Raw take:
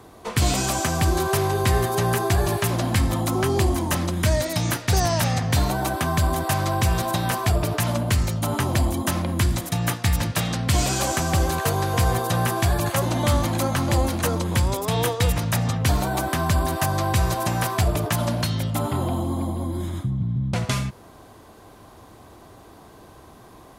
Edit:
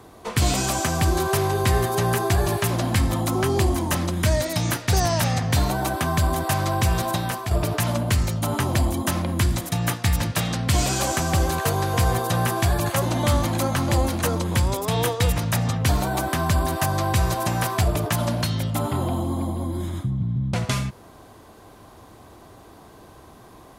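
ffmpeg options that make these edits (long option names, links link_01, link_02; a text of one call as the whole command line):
ffmpeg -i in.wav -filter_complex "[0:a]asplit=2[link_01][link_02];[link_01]atrim=end=7.51,asetpts=PTS-STARTPTS,afade=type=out:start_time=7.1:duration=0.41:silence=0.398107[link_03];[link_02]atrim=start=7.51,asetpts=PTS-STARTPTS,afade=type=in:duration=0.004:curve=hsin:silence=0.398107[link_04];[link_03][link_04]concat=n=2:v=0:a=1" out.wav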